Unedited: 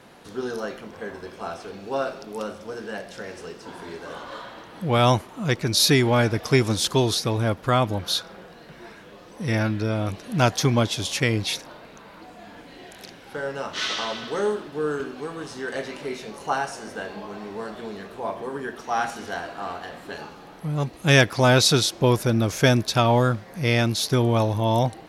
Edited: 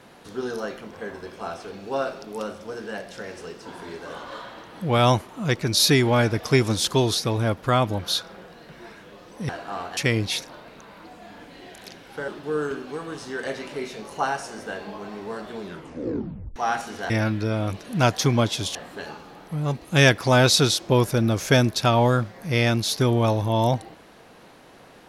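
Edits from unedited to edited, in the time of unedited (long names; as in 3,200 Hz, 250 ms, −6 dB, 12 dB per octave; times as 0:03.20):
0:09.49–0:11.14: swap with 0:19.39–0:19.87
0:13.45–0:14.57: remove
0:17.90: tape stop 0.95 s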